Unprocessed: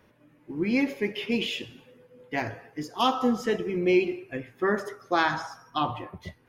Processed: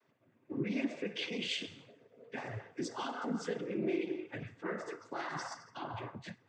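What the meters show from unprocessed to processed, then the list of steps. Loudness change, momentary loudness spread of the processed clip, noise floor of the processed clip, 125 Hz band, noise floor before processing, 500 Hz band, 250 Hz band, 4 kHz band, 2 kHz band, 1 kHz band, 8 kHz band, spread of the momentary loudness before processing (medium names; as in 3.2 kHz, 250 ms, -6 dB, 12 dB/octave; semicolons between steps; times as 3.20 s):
-11.5 dB, 10 LU, -72 dBFS, -7.0 dB, -61 dBFS, -11.5 dB, -10.5 dB, -8.0 dB, -11.5 dB, -14.0 dB, -4.0 dB, 14 LU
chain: compression 16:1, threshold -30 dBFS, peak gain reduction 14 dB; peak limiter -28.5 dBFS, peak gain reduction 10.5 dB; noise-vocoded speech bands 16; three bands expanded up and down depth 40%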